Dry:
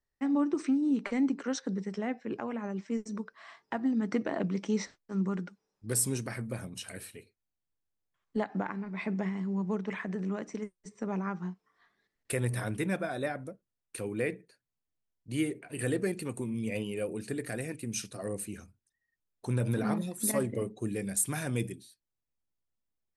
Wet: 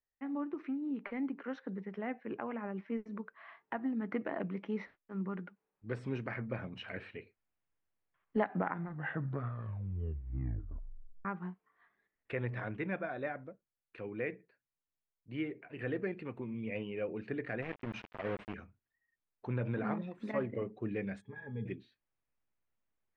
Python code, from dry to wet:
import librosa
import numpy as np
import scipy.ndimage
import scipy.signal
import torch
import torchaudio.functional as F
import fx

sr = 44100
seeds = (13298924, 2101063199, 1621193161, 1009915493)

y = fx.sample_gate(x, sr, floor_db=-37.0, at=(17.62, 18.54))
y = fx.octave_resonator(y, sr, note='G#', decay_s=0.11, at=(21.2, 21.65), fade=0.02)
y = fx.edit(y, sr, fx.tape_stop(start_s=8.44, length_s=2.81), tone=tone)
y = scipy.signal.sosfilt(scipy.signal.butter(4, 2600.0, 'lowpass', fs=sr, output='sos'), y)
y = fx.low_shelf(y, sr, hz=430.0, db=-5.5)
y = fx.rider(y, sr, range_db=10, speed_s=2.0)
y = y * librosa.db_to_amplitude(-2.5)